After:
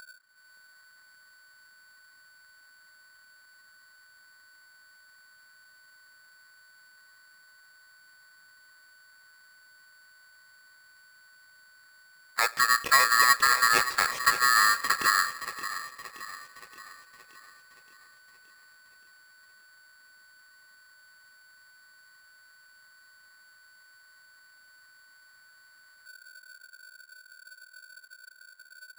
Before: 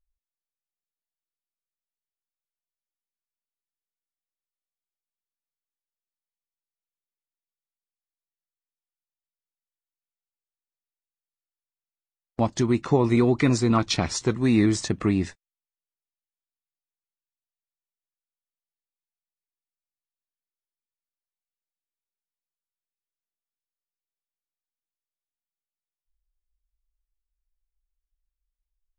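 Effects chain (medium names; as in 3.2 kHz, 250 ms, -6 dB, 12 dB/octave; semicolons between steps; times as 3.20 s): local Wiener filter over 41 samples; low-pass that closes with the level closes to 910 Hz, closed at -19.5 dBFS; graphic EQ with 31 bands 160 Hz +8 dB, 400 Hz +9 dB, 1 kHz +9 dB, 1.6 kHz +4 dB, 3.15 kHz +11 dB; in parallel at -1 dB: peak limiter -17 dBFS, peak gain reduction 13 dB; on the sum: upward compressor, threshold -21 dBFS; thinning echo 573 ms, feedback 61%, high-pass 230 Hz, level -10.5 dB; on a send at -19.5 dB: reverberation RT60 2.4 s, pre-delay 30 ms; on the sum: polarity switched at an audio rate 1.5 kHz; trim -7.5 dB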